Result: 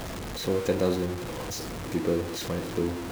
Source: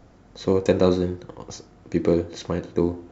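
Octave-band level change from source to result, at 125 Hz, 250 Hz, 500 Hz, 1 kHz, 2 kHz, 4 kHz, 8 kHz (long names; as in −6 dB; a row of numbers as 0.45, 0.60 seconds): −4.5 dB, −5.5 dB, −6.0 dB, −2.0 dB, +1.0 dB, +1.5 dB, can't be measured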